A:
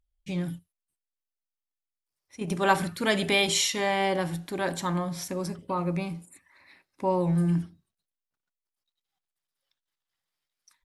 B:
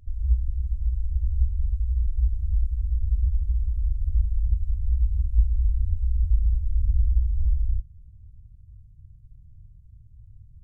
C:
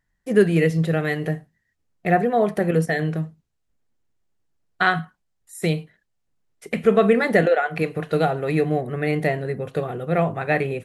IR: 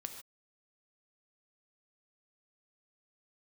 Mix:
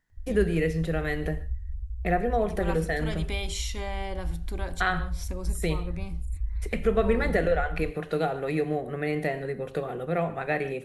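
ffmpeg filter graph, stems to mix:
-filter_complex "[0:a]bandreject=f=1800:w=17,volume=0.631[s0];[1:a]adelay=100,volume=0.316[s1];[2:a]highpass=150,volume=0.75,asplit=2[s2][s3];[s3]volume=0.422[s4];[s0][s2]amix=inputs=2:normalize=0,acompressor=threshold=0.0158:ratio=2,volume=1[s5];[3:a]atrim=start_sample=2205[s6];[s4][s6]afir=irnorm=-1:irlink=0[s7];[s1][s5][s7]amix=inputs=3:normalize=0"

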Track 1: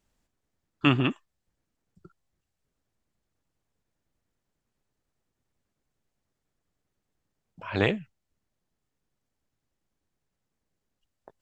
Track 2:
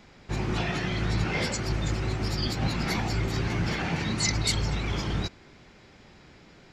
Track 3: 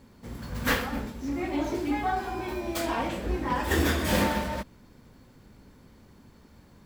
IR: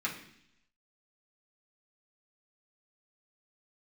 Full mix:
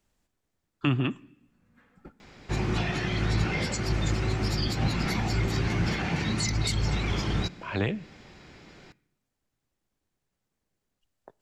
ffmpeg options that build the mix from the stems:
-filter_complex "[0:a]volume=1.12,asplit=3[s0][s1][s2];[s1]volume=0.0631[s3];[1:a]asoftclip=type=hard:threshold=0.168,adelay=2200,volume=1.26,asplit=2[s4][s5];[s5]volume=0.112[s6];[2:a]lowpass=f=1500:p=1,acompressor=threshold=0.0316:ratio=6,adelay=1100,volume=0.251,asplit=2[s7][s8];[s8]volume=0.0841[s9];[s2]apad=whole_len=350897[s10];[s7][s10]sidechaingate=range=0.0224:threshold=0.00355:ratio=16:detection=peak[s11];[3:a]atrim=start_sample=2205[s12];[s3][s6][s9]amix=inputs=3:normalize=0[s13];[s13][s12]afir=irnorm=-1:irlink=0[s14];[s0][s4][s11][s14]amix=inputs=4:normalize=0,acrossover=split=230[s15][s16];[s16]acompressor=threshold=0.0316:ratio=3[s17];[s15][s17]amix=inputs=2:normalize=0"

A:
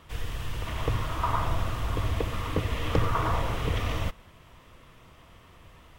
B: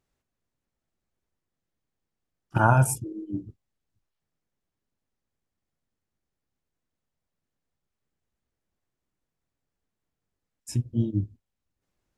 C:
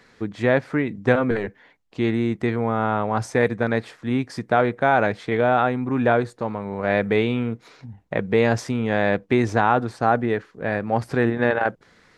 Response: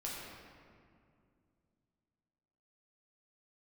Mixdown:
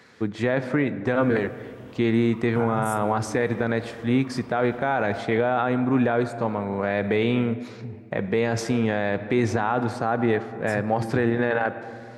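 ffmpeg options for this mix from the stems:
-filter_complex "[0:a]alimiter=limit=0.106:level=0:latency=1:release=193,adelay=1100,volume=0.126[s0];[1:a]alimiter=limit=0.188:level=0:latency=1,volume=0.562,asplit=2[s1][s2];[s2]volume=0.168[s3];[2:a]volume=1.12,asplit=2[s4][s5];[s5]volume=0.2[s6];[3:a]atrim=start_sample=2205[s7];[s3][s6]amix=inputs=2:normalize=0[s8];[s8][s7]afir=irnorm=-1:irlink=0[s9];[s0][s1][s4][s9]amix=inputs=4:normalize=0,highpass=79,alimiter=limit=0.266:level=0:latency=1:release=47"

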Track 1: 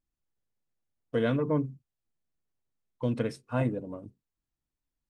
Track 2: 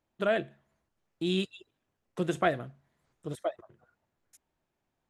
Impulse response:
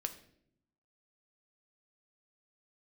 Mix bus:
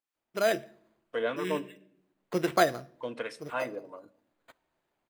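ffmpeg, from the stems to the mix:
-filter_complex "[0:a]highpass=f=310:p=1,lowshelf=f=420:g=-11.5,acrossover=split=830[s0][s1];[s0]aeval=exprs='val(0)*(1-0.5/2+0.5/2*cos(2*PI*3.2*n/s))':c=same[s2];[s1]aeval=exprs='val(0)*(1-0.5/2-0.5/2*cos(2*PI*3.2*n/s))':c=same[s3];[s2][s3]amix=inputs=2:normalize=0,volume=1.33,asplit=3[s4][s5][s6];[s5]volume=0.562[s7];[1:a]dynaudnorm=f=110:g=5:m=2.99,acrusher=samples=8:mix=1:aa=0.000001,adelay=150,volume=0.447,asplit=2[s8][s9];[s9]volume=0.316[s10];[s6]apad=whole_len=231253[s11];[s8][s11]sidechaincompress=threshold=0.00501:ratio=8:attack=7.1:release=548[s12];[2:a]atrim=start_sample=2205[s13];[s7][s10]amix=inputs=2:normalize=0[s14];[s14][s13]afir=irnorm=-1:irlink=0[s15];[s4][s12][s15]amix=inputs=3:normalize=0,bass=f=250:g=-9,treble=f=4000:g=-6"

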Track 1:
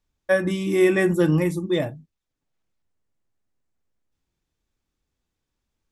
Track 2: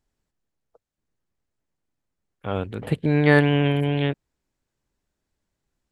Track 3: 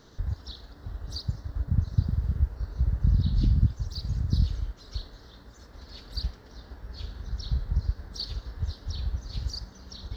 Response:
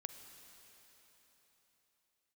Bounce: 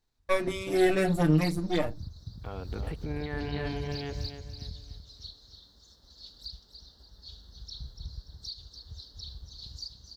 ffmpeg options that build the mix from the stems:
-filter_complex "[0:a]aeval=exprs='if(lt(val(0),0),0.251*val(0),val(0))':c=same,asplit=2[s0][s1];[s1]adelay=5.8,afreqshift=0.4[s2];[s0][s2]amix=inputs=2:normalize=1,volume=1.12[s3];[1:a]equalizer=f=810:t=o:w=2.1:g=5,volume=0.422,asplit=3[s4][s5][s6];[s5]volume=0.133[s7];[2:a]highshelf=f=3000:t=q:w=3:g=9.5,alimiter=limit=0.178:level=0:latency=1:release=268,volume=0.422,asplit=2[s8][s9];[s9]volume=0.422[s10];[s6]apad=whole_len=448377[s11];[s8][s11]sidechaingate=range=0.0224:threshold=0.00316:ratio=16:detection=peak[s12];[s4][s12]amix=inputs=2:normalize=0,bandreject=f=570:w=12,alimiter=level_in=1.41:limit=0.0631:level=0:latency=1:release=53,volume=0.708,volume=1[s13];[s7][s10]amix=inputs=2:normalize=0,aecho=0:1:289|578|867|1156|1445:1|0.36|0.13|0.0467|0.0168[s14];[s3][s13][s14]amix=inputs=3:normalize=0"

